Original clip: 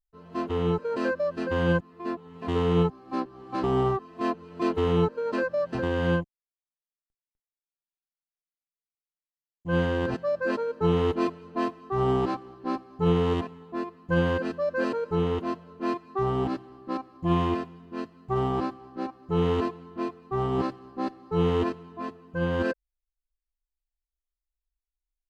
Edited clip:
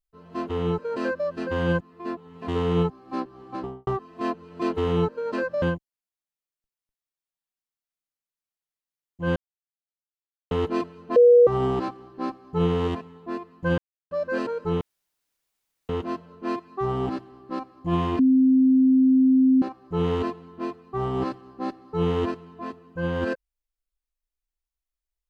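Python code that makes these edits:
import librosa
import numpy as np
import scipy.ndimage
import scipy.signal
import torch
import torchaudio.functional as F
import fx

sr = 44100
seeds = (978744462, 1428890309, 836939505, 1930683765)

y = fx.studio_fade_out(x, sr, start_s=3.41, length_s=0.46)
y = fx.edit(y, sr, fx.cut(start_s=5.62, length_s=0.46),
    fx.silence(start_s=9.82, length_s=1.15),
    fx.bleep(start_s=11.62, length_s=0.31, hz=483.0, db=-10.0),
    fx.silence(start_s=14.24, length_s=0.33),
    fx.insert_room_tone(at_s=15.27, length_s=1.08),
    fx.bleep(start_s=17.57, length_s=1.43, hz=261.0, db=-14.0), tone=tone)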